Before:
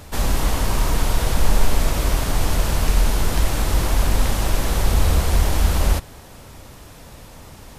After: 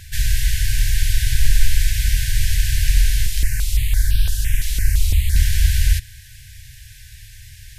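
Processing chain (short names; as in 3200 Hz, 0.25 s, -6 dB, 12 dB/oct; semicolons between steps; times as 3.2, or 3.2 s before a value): FFT band-reject 130–1500 Hz; 3.26–5.36 step phaser 5.9 Hz 350–2000 Hz; gain +2.5 dB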